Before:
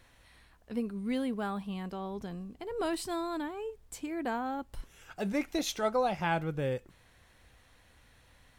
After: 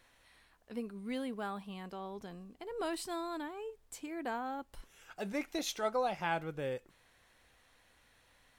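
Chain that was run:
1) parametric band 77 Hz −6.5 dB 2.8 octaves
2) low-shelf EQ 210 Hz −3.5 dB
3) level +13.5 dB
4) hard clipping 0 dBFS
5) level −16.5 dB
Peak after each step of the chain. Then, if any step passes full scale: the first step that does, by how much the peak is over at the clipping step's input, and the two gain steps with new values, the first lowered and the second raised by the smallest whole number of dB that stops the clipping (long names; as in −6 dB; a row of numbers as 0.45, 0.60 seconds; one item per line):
−17.5, −17.5, −4.0, −4.0, −20.5 dBFS
no step passes full scale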